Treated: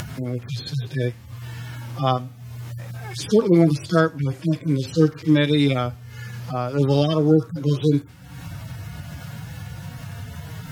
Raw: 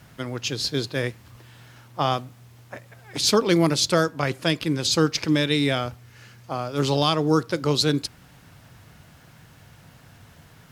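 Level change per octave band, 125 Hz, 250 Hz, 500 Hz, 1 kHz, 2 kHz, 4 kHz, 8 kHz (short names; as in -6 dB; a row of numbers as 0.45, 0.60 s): +6.0, +4.0, +2.5, -1.5, -2.0, -7.5, -10.5 dB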